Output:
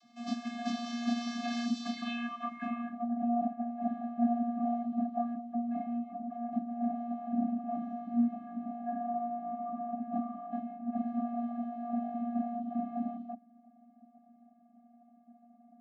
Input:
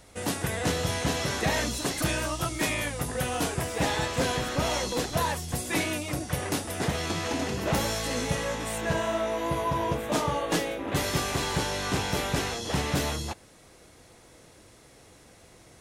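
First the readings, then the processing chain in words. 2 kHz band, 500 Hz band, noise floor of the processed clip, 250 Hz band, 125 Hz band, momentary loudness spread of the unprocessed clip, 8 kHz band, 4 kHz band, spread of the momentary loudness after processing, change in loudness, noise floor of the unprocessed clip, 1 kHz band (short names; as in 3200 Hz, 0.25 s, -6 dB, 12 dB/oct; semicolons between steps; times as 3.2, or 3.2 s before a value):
under -15 dB, -11.5 dB, -62 dBFS, +0.5 dB, under -20 dB, 3 LU, under -25 dB, under -15 dB, 7 LU, -6.5 dB, -55 dBFS, -5.0 dB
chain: low-pass sweep 5000 Hz -> 610 Hz, 1.84–3.19; vocoder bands 32, square 237 Hz; gain -6.5 dB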